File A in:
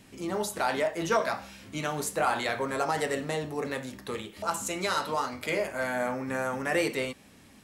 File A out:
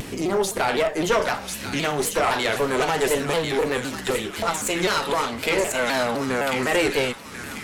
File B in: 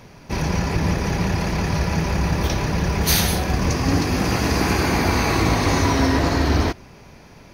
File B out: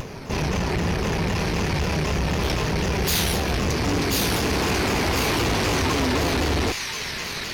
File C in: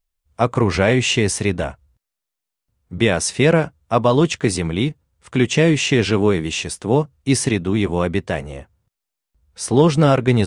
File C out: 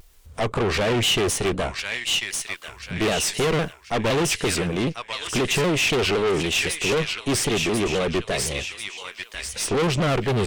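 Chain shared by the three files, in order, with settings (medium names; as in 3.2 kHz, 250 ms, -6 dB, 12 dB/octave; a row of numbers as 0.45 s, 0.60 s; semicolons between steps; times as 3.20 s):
in parallel at +1 dB: upward compressor, threshold -21 dBFS; on the sum: peaking EQ 420 Hz +6 dB 0.38 oct; on a send: feedback echo behind a high-pass 1042 ms, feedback 42%, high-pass 2 kHz, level -3 dB; on the sum: valve stage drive 15 dB, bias 0.55; dynamic bell 3 kHz, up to +4 dB, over -36 dBFS, Q 1.8; vibrato with a chosen wave saw down 3.9 Hz, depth 160 cents; normalise loudness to -23 LUFS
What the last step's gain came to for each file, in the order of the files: +1.0 dB, -4.5 dB, -4.5 dB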